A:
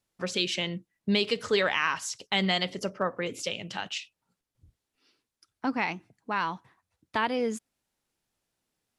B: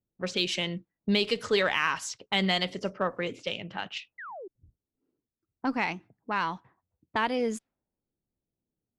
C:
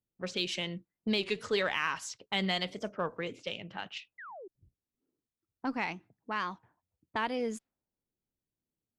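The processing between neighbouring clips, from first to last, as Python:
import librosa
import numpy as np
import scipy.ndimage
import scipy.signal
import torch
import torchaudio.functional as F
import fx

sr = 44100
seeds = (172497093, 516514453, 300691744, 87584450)

y1 = fx.env_lowpass(x, sr, base_hz=370.0, full_db=-26.5)
y1 = fx.spec_paint(y1, sr, seeds[0], shape='fall', start_s=4.18, length_s=0.3, low_hz=340.0, high_hz=2100.0, level_db=-41.0)
y1 = fx.cheby_harmonics(y1, sr, harmonics=(8,), levels_db=(-38,), full_scale_db=-11.5)
y2 = fx.record_warp(y1, sr, rpm=33.33, depth_cents=160.0)
y2 = y2 * 10.0 ** (-5.0 / 20.0)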